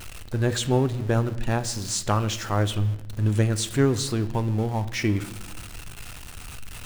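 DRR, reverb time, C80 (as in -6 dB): 10.5 dB, 0.85 s, 17.0 dB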